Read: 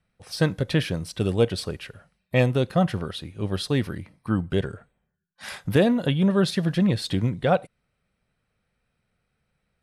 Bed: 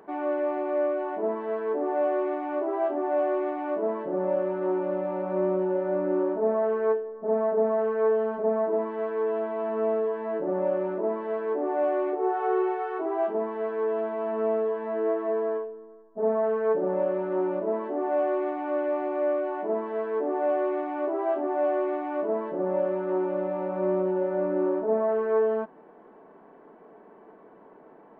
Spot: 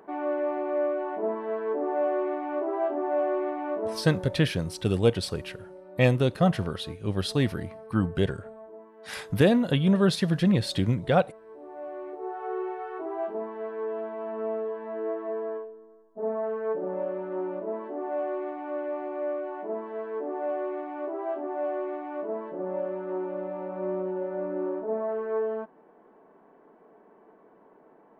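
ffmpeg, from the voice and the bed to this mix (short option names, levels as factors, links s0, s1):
-filter_complex "[0:a]adelay=3650,volume=0.891[s0];[1:a]volume=5.01,afade=t=out:st=3.67:d=0.74:silence=0.112202,afade=t=in:st=11.48:d=1.48:silence=0.177828[s1];[s0][s1]amix=inputs=2:normalize=0"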